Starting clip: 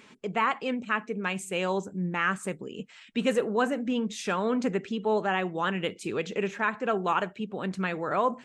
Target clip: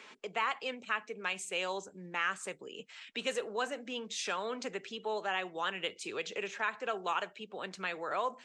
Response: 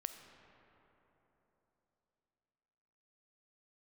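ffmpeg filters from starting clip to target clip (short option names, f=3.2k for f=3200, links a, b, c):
-filter_complex "[0:a]acrossover=split=120|3000[a][b][c];[b]acompressor=threshold=-50dB:ratio=1.5[d];[a][d][c]amix=inputs=3:normalize=0,acrossover=split=380 8000:gain=0.126 1 0.158[e][f][g];[e][f][g]amix=inputs=3:normalize=0,volume=2.5dB"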